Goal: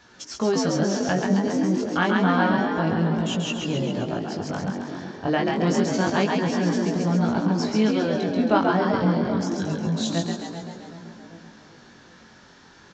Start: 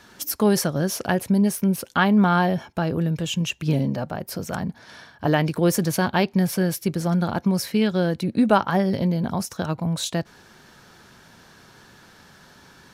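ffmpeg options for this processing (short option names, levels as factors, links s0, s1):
-filter_complex "[0:a]asettb=1/sr,asplit=3[s0][s1][s2];[s0]atrim=end=9.324[s3];[s1]atrim=start=9.32:end=9.85,asetpts=PTS-STARTPTS,afade=t=in:d=0.004:c=qsin,afade=t=out:st=0.526:d=0.004:c=qsin,asuperstop=centerf=840:order=20:qfactor=0.93[s4];[s2]atrim=start=9.846[s5];[s3][s4]acrossfade=d=0.004:c1=hsin:c2=qsin[s6];[s6][s5]acrossfade=d=0.004:c1=qsin:c2=hsin,asplit=2[s7][s8];[s8]asplit=8[s9][s10][s11][s12][s13][s14][s15][s16];[s9]adelay=135,afreqshift=55,volume=0.668[s17];[s10]adelay=270,afreqshift=110,volume=0.38[s18];[s11]adelay=405,afreqshift=165,volume=0.216[s19];[s12]adelay=540,afreqshift=220,volume=0.124[s20];[s13]adelay=675,afreqshift=275,volume=0.0708[s21];[s14]adelay=810,afreqshift=330,volume=0.0403[s22];[s15]adelay=945,afreqshift=385,volume=0.0229[s23];[s16]adelay=1080,afreqshift=440,volume=0.013[s24];[s17][s18][s19][s20][s21][s22][s23][s24]amix=inputs=8:normalize=0[s25];[s7][s25]amix=inputs=2:normalize=0,aresample=16000,aresample=44100,asplit=2[s26][s27];[s27]adelay=385,lowpass=f=2000:p=1,volume=0.316,asplit=2[s28][s29];[s29]adelay=385,lowpass=f=2000:p=1,volume=0.55,asplit=2[s30][s31];[s31]adelay=385,lowpass=f=2000:p=1,volume=0.55,asplit=2[s32][s33];[s33]adelay=385,lowpass=f=2000:p=1,volume=0.55,asplit=2[s34][s35];[s35]adelay=385,lowpass=f=2000:p=1,volume=0.55,asplit=2[s36][s37];[s37]adelay=385,lowpass=f=2000:p=1,volume=0.55[s38];[s28][s30][s32][s34][s36][s38]amix=inputs=6:normalize=0[s39];[s26][s39]amix=inputs=2:normalize=0,flanger=delay=16.5:depth=6:speed=0.28"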